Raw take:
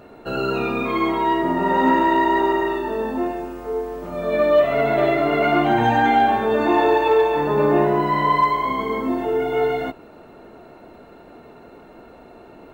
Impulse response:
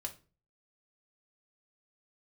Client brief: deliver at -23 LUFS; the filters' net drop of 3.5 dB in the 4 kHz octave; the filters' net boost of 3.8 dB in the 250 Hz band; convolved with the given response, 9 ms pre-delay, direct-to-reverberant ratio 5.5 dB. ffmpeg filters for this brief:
-filter_complex "[0:a]equalizer=f=250:t=o:g=5,equalizer=f=4000:t=o:g=-5,asplit=2[s0][s1];[1:a]atrim=start_sample=2205,adelay=9[s2];[s1][s2]afir=irnorm=-1:irlink=0,volume=0.631[s3];[s0][s3]amix=inputs=2:normalize=0,volume=0.501"

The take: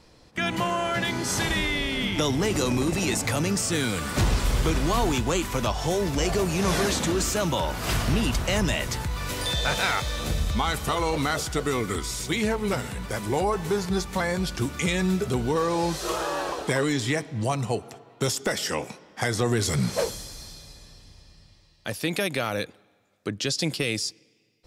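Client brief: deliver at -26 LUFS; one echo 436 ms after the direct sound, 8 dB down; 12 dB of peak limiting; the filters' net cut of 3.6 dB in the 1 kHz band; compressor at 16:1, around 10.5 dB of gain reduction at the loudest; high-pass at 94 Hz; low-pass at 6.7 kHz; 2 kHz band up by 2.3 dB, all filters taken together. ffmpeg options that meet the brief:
-af "highpass=94,lowpass=6700,equalizer=f=1000:t=o:g=-6,equalizer=f=2000:t=o:g=4.5,acompressor=threshold=0.0282:ratio=16,alimiter=level_in=1.68:limit=0.0631:level=0:latency=1,volume=0.596,aecho=1:1:436:0.398,volume=3.55"

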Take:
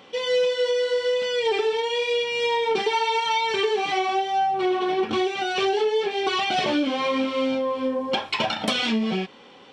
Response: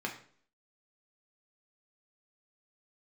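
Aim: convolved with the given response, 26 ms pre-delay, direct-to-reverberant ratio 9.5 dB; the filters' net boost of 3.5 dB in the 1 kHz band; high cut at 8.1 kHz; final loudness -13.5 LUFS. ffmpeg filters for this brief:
-filter_complex "[0:a]lowpass=8100,equalizer=f=1000:t=o:g=4.5,asplit=2[s0][s1];[1:a]atrim=start_sample=2205,adelay=26[s2];[s1][s2]afir=irnorm=-1:irlink=0,volume=0.211[s3];[s0][s3]amix=inputs=2:normalize=0,volume=2.51"

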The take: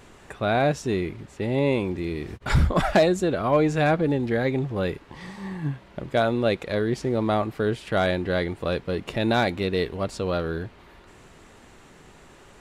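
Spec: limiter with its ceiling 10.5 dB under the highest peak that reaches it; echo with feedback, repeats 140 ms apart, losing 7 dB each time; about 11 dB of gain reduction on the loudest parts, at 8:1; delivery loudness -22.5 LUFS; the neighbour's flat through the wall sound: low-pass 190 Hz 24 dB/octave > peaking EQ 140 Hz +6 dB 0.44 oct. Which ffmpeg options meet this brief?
-af "acompressor=threshold=0.0501:ratio=8,alimiter=level_in=1.33:limit=0.0631:level=0:latency=1,volume=0.75,lowpass=f=190:w=0.5412,lowpass=f=190:w=1.3066,equalizer=f=140:t=o:w=0.44:g=6,aecho=1:1:140|280|420|560|700:0.447|0.201|0.0905|0.0407|0.0183,volume=6.31"

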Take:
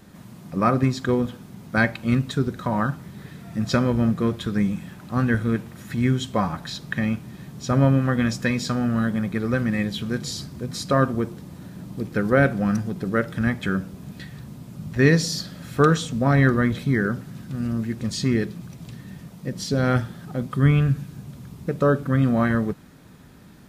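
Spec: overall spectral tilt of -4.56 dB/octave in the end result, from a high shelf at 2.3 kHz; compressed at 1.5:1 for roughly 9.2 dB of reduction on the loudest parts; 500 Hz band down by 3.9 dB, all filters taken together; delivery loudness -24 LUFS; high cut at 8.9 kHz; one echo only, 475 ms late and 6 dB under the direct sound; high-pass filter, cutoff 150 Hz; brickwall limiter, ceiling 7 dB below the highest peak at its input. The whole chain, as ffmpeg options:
-af "highpass=150,lowpass=8900,equalizer=f=500:t=o:g=-5,highshelf=f=2300:g=7,acompressor=threshold=0.01:ratio=1.5,alimiter=limit=0.0891:level=0:latency=1,aecho=1:1:475:0.501,volume=2.66"

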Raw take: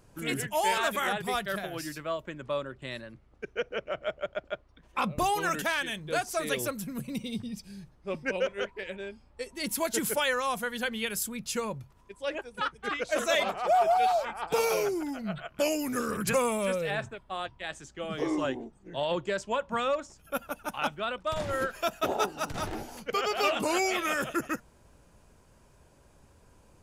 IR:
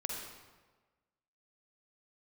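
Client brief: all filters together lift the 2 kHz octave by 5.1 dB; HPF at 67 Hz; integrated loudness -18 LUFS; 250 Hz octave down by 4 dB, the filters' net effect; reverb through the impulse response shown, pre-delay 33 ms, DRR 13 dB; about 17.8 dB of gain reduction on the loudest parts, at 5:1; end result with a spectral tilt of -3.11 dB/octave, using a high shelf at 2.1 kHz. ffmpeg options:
-filter_complex "[0:a]highpass=67,equalizer=f=250:t=o:g=-5.5,equalizer=f=2000:t=o:g=3.5,highshelf=f=2100:g=5.5,acompressor=threshold=0.00891:ratio=5,asplit=2[s0][s1];[1:a]atrim=start_sample=2205,adelay=33[s2];[s1][s2]afir=irnorm=-1:irlink=0,volume=0.188[s3];[s0][s3]amix=inputs=2:normalize=0,volume=16.8"

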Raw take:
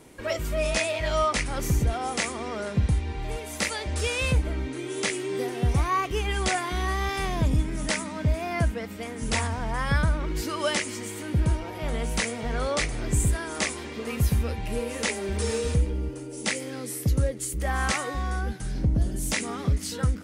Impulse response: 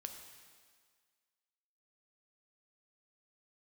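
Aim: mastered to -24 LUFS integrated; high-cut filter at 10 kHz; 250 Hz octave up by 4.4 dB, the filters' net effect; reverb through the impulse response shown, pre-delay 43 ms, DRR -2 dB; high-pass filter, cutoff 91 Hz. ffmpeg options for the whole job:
-filter_complex "[0:a]highpass=91,lowpass=10000,equalizer=f=250:t=o:g=6,asplit=2[s0][s1];[1:a]atrim=start_sample=2205,adelay=43[s2];[s1][s2]afir=irnorm=-1:irlink=0,volume=1.88[s3];[s0][s3]amix=inputs=2:normalize=0,volume=0.944"

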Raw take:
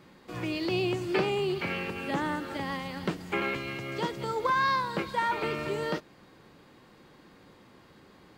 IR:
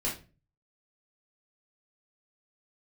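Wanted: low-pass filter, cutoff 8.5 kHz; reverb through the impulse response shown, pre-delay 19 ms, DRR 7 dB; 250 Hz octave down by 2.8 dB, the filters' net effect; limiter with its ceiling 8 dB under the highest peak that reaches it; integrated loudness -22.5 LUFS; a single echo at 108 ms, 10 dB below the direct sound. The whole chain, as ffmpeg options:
-filter_complex "[0:a]lowpass=8500,equalizer=f=250:t=o:g=-4.5,alimiter=limit=0.0708:level=0:latency=1,aecho=1:1:108:0.316,asplit=2[s0][s1];[1:a]atrim=start_sample=2205,adelay=19[s2];[s1][s2]afir=irnorm=-1:irlink=0,volume=0.237[s3];[s0][s3]amix=inputs=2:normalize=0,volume=3.16"

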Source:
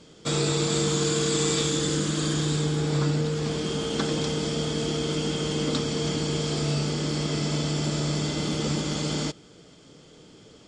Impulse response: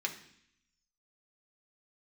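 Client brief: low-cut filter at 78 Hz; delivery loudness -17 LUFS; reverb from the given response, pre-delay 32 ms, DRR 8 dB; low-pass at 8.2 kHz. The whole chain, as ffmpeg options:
-filter_complex "[0:a]highpass=78,lowpass=8200,asplit=2[s0][s1];[1:a]atrim=start_sample=2205,adelay=32[s2];[s1][s2]afir=irnorm=-1:irlink=0,volume=0.266[s3];[s0][s3]amix=inputs=2:normalize=0,volume=2.99"

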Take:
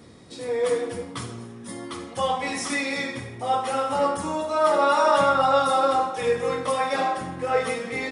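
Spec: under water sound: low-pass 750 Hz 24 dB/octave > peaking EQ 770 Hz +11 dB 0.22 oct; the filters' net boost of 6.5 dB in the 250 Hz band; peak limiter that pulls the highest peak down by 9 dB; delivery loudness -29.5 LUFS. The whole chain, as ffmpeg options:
-af "equalizer=f=250:t=o:g=7.5,alimiter=limit=0.178:level=0:latency=1,lowpass=f=750:w=0.5412,lowpass=f=750:w=1.3066,equalizer=f=770:t=o:w=0.22:g=11,volume=0.562"

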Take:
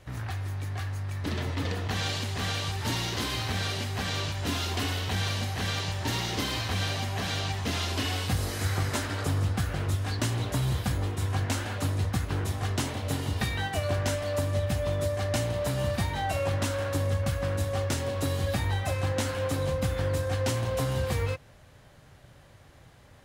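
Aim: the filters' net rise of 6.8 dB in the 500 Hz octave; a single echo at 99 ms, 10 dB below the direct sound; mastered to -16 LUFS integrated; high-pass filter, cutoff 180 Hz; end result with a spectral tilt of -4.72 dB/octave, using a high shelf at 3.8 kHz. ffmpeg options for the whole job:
-af "highpass=180,equalizer=f=500:t=o:g=8,highshelf=f=3800:g=-5.5,aecho=1:1:99:0.316,volume=4.22"

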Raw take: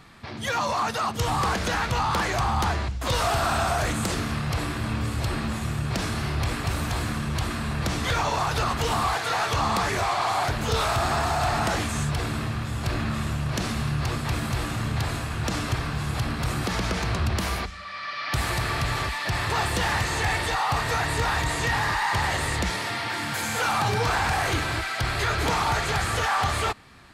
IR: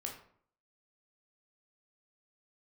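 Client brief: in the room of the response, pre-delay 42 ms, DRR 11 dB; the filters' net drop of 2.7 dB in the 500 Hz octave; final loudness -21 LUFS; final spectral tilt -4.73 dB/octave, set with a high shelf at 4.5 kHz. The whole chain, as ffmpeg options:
-filter_complex "[0:a]equalizer=f=500:t=o:g=-3.5,highshelf=f=4500:g=-5.5,asplit=2[s0][s1];[1:a]atrim=start_sample=2205,adelay=42[s2];[s1][s2]afir=irnorm=-1:irlink=0,volume=0.316[s3];[s0][s3]amix=inputs=2:normalize=0,volume=1.88"

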